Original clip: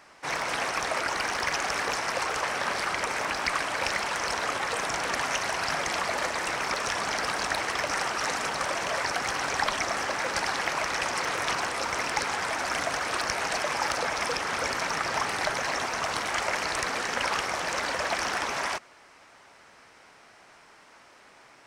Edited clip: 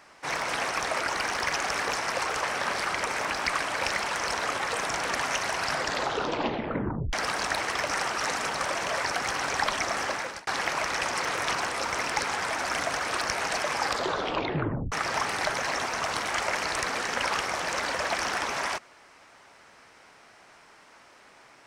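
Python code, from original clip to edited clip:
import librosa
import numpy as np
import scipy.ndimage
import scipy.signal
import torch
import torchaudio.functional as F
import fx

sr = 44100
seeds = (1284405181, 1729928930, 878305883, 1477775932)

y = fx.edit(x, sr, fx.tape_stop(start_s=5.68, length_s=1.45),
    fx.fade_out_span(start_s=10.11, length_s=0.36),
    fx.tape_stop(start_s=13.79, length_s=1.13), tone=tone)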